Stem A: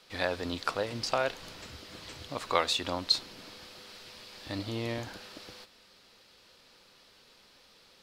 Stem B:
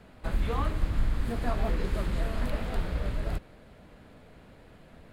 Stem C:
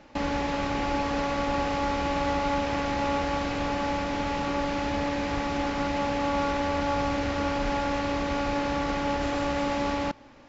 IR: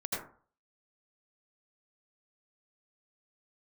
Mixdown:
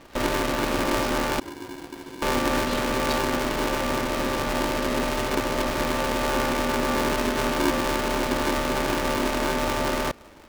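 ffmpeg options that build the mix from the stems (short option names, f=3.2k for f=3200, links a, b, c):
-filter_complex "[0:a]volume=-10dB[a];[1:a]volume=-11.5dB[b];[2:a]lowshelf=f=140:g=8,volume=1dB,asplit=3[c][d][e];[c]atrim=end=1.4,asetpts=PTS-STARTPTS,afade=t=out:st=1.396:d=0.004:c=hsin[f];[d]atrim=start=1.4:end=2.22,asetpts=PTS-STARTPTS,volume=0[g];[e]atrim=start=2.22,asetpts=PTS-STARTPTS,afade=t=in:d=0.004:c=hsin[h];[f][g][h]concat=n=3:v=0:a=1[i];[a][b][i]amix=inputs=3:normalize=0,aeval=exprs='val(0)*sgn(sin(2*PI*320*n/s))':c=same"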